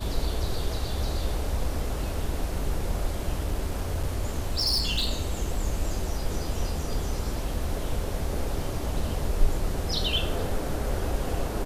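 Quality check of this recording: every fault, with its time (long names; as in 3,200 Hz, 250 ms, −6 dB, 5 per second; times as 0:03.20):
0:03.45–0:05.10: clipping −21 dBFS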